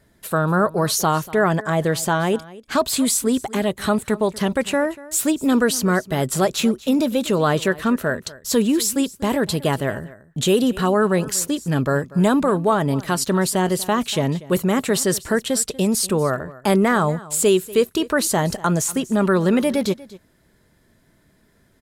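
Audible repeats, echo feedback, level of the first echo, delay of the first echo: 1, repeats not evenly spaced, −19.5 dB, 240 ms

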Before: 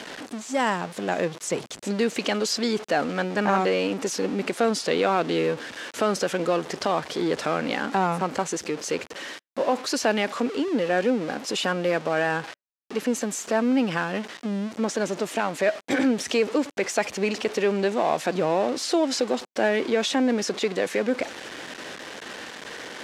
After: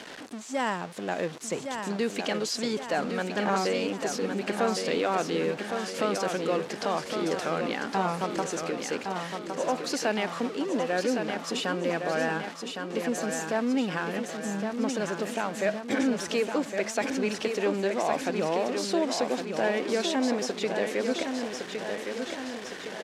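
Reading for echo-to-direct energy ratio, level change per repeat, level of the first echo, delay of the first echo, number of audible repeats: −4.5 dB, −5.0 dB, −6.0 dB, 1,112 ms, 4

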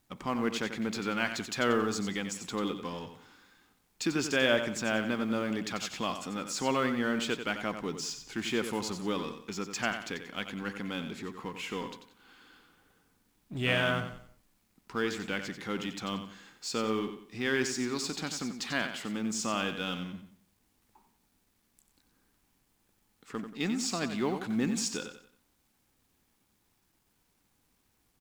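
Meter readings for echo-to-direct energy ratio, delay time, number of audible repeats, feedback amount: −8.5 dB, 91 ms, 3, 34%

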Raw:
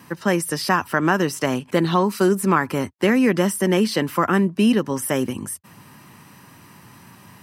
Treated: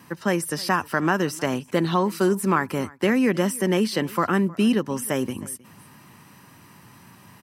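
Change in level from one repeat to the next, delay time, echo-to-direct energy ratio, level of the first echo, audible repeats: repeats not evenly spaced, 313 ms, −22.5 dB, −22.5 dB, 1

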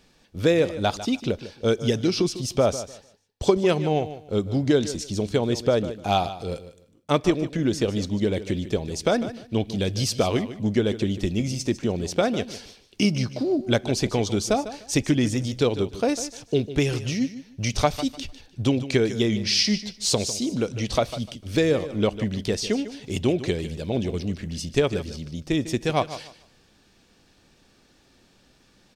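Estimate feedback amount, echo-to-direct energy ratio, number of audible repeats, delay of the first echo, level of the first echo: 22%, −13.5 dB, 2, 150 ms, −13.5 dB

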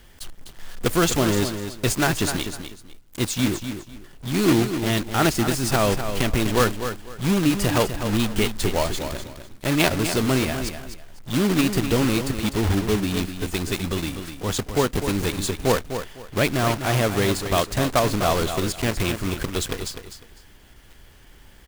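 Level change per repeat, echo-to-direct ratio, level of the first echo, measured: −12.5 dB, −9.0 dB, −9.0 dB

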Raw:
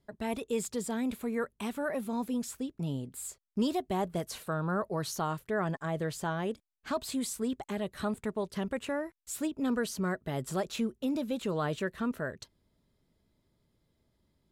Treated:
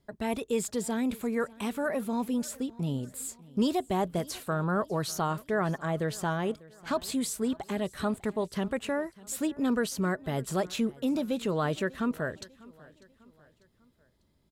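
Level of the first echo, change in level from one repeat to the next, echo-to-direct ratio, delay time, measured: −22.0 dB, −7.0 dB, −21.0 dB, 596 ms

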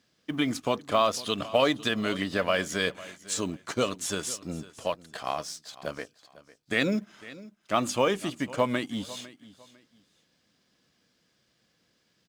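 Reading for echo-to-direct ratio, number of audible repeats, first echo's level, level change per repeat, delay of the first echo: −18.0 dB, 2, −18.5 dB, −11.5 dB, 502 ms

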